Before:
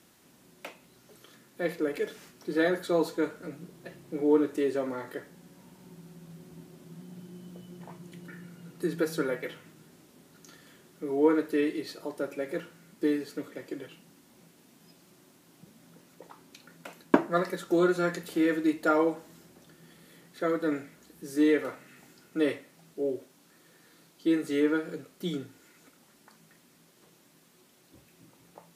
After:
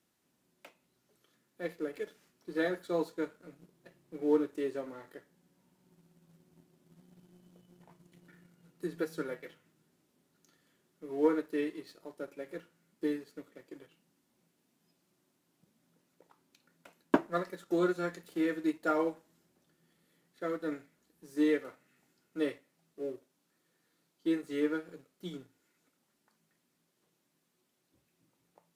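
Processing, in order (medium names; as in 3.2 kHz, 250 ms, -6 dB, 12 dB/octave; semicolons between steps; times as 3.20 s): waveshaping leveller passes 1; upward expansion 1.5:1, over -30 dBFS; trim -6.5 dB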